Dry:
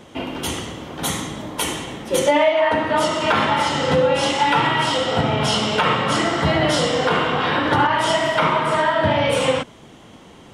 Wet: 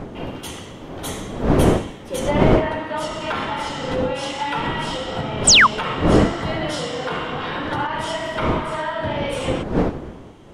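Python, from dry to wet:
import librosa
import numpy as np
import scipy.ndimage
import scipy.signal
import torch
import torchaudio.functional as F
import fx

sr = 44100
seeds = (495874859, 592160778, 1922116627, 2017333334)

y = fx.dmg_wind(x, sr, seeds[0], corner_hz=420.0, level_db=-17.0)
y = fx.spec_paint(y, sr, seeds[1], shape='fall', start_s=5.47, length_s=0.2, low_hz=920.0, high_hz=9100.0, level_db=-3.0)
y = y * librosa.db_to_amplitude(-7.0)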